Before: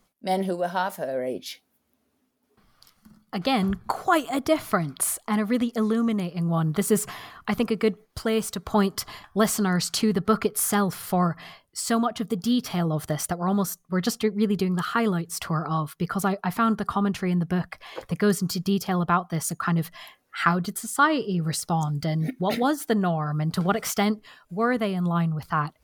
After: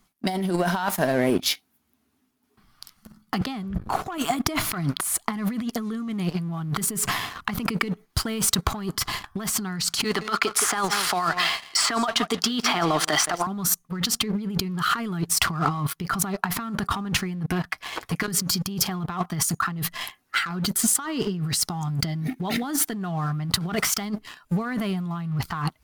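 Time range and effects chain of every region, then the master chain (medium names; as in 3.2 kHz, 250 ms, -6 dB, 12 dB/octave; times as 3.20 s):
3.41–4.18 s: tilt shelf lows +3.5 dB, about 830 Hz + three bands expanded up and down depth 40%
10.04–13.47 s: band-pass 520–6400 Hz + delay 169 ms -17.5 dB + three bands compressed up and down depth 100%
17.46–18.28 s: bass shelf 130 Hz -9.5 dB + comb of notches 200 Hz + compression 10:1, threshold -33 dBFS
whole clip: peaking EQ 530 Hz -14 dB 0.48 oct; waveshaping leveller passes 2; compressor with a negative ratio -26 dBFS, ratio -1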